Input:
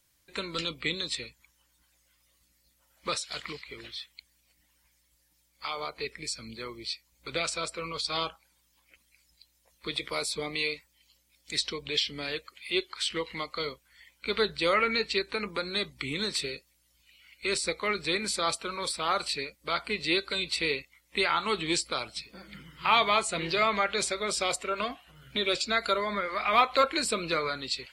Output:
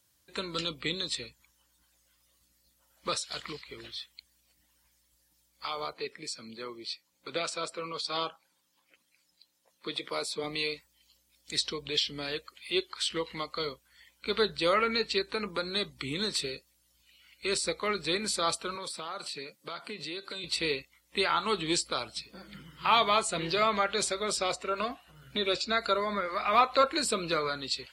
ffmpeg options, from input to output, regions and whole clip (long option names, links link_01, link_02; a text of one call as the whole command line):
ffmpeg -i in.wav -filter_complex "[0:a]asettb=1/sr,asplit=3[link_01][link_02][link_03];[link_01]atrim=end=5.934[link_04];[link_02]atrim=start=5.93:end=10.44,asetpts=PTS-STARTPTS,afade=type=in:duration=0.004:curve=qsin,afade=type=out:start_time=4.506:duration=0.004:curve=qsin,highpass=190,highshelf=frequency=5300:gain=-6.5[link_05];[link_03]atrim=start=10.436[link_06];[link_04][link_05]acrossfade=duration=0.004:curve1=hsin:curve2=qsin[link_07];[link_07][link_06]acrossfade=duration=0.004:curve1=qsin:curve2=hsin,asettb=1/sr,asplit=3[link_08][link_09][link_10];[link_08]atrim=end=18.754[link_11];[link_09]atrim=start=18.75:end=20.44,asetpts=PTS-STARTPTS,afade=type=in:duration=0.004:curve=qsin,afade=type=out:start_time=1.686:duration=0.004:curve=qsin,highpass=frequency=120:width=0.5412,highpass=frequency=120:width=1.3066,acompressor=threshold=-35dB:ratio=4:attack=3.2:release=140:knee=1:detection=peak[link_12];[link_10]atrim=start=20.436[link_13];[link_11][link_12]acrossfade=duration=0.004:curve1=hsin:curve2=qsin[link_14];[link_14][link_13]acrossfade=duration=0.004:curve1=qsin:curve2=hsin,asettb=1/sr,asplit=3[link_15][link_16][link_17];[link_15]atrim=end=24.374[link_18];[link_16]atrim=start=24.37:end=26.97,asetpts=PTS-STARTPTS,afade=type=in:duration=0.004:curve=qsin,afade=type=out:start_time=2.596:duration=0.004:curve=qsin,bandreject=frequency=3200:width=9,acrossover=split=6500[link_19][link_20];[link_20]acompressor=threshold=-55dB:ratio=4:attack=1:release=60[link_21];[link_19][link_21]amix=inputs=2:normalize=0[link_22];[link_17]atrim=start=26.966[link_23];[link_18][link_22]acrossfade=duration=0.004:curve1=hsin:curve2=qsin[link_24];[link_24][link_23]acrossfade=duration=0.004:curve1=qsin:curve2=hsin,highpass=54,equalizer=frequency=2200:width=3:gain=-5.5" out.wav